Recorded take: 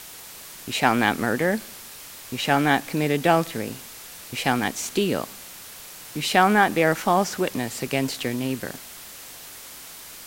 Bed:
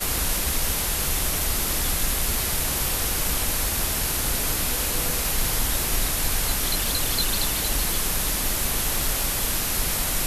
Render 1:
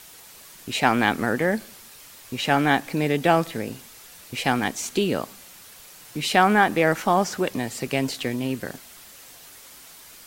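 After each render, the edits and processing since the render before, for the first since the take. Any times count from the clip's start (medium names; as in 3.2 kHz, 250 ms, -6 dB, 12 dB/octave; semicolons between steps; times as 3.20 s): noise reduction 6 dB, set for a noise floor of -42 dBFS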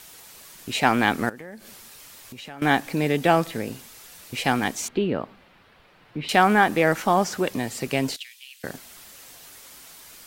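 1.29–2.62 s: compression 4:1, threshold -39 dBFS; 4.88–6.29 s: distance through air 410 m; 8.16–8.64 s: ladder high-pass 2.3 kHz, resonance 35%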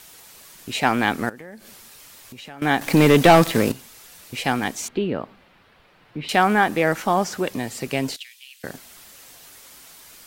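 2.81–3.72 s: waveshaping leveller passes 3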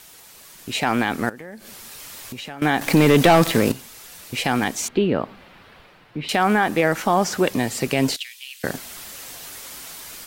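level rider gain up to 8.5 dB; peak limiter -7 dBFS, peak gain reduction 6 dB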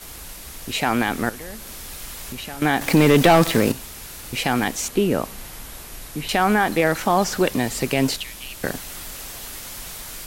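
add bed -14 dB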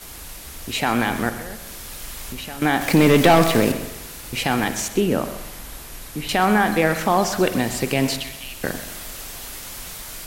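spring tank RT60 1.1 s, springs 43 ms, chirp 50 ms, DRR 10 dB; bit-crushed delay 128 ms, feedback 35%, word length 7-bit, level -14 dB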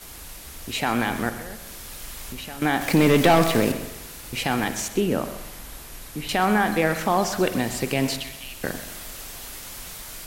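trim -3 dB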